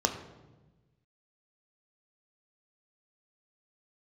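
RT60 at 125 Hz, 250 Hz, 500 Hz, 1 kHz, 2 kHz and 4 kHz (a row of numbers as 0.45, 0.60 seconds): 1.7, 1.6, 1.3, 1.0, 0.90, 0.75 seconds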